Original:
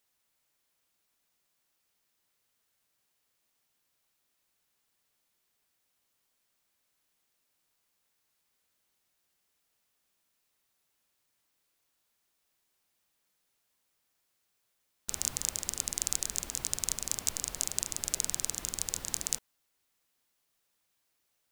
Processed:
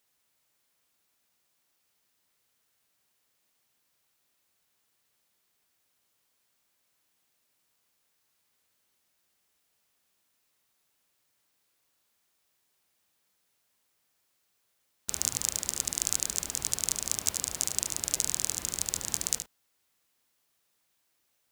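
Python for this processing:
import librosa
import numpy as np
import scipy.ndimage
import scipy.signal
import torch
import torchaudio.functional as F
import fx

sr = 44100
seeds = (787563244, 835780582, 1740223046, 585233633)

p1 = scipy.signal.sosfilt(scipy.signal.butter(2, 46.0, 'highpass', fs=sr, output='sos'), x)
p2 = p1 + fx.echo_single(p1, sr, ms=73, db=-9.0, dry=0)
y = p2 * librosa.db_to_amplitude(2.5)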